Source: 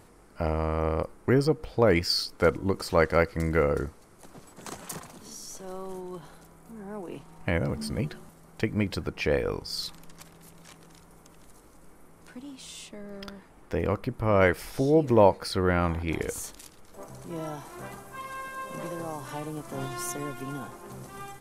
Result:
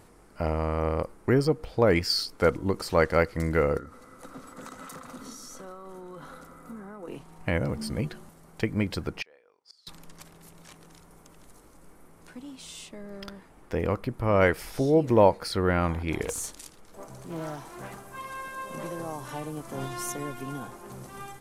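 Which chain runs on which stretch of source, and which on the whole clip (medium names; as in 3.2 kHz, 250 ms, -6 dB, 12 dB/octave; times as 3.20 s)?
3.77–7.08 s: peaking EQ 1.3 kHz +15 dB 0.4 oct + compression, threshold -40 dBFS + small resonant body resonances 260/510/2000/3800 Hz, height 13 dB, ringing for 90 ms
9.22–9.87 s: inverted gate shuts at -25 dBFS, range -29 dB + band-pass 560–7800 Hz
16.25–18.03 s: hum notches 50/100 Hz + dynamic bell 8.4 kHz, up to +5 dB, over -51 dBFS, Q 0.74 + loudspeaker Doppler distortion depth 0.42 ms
whole clip: none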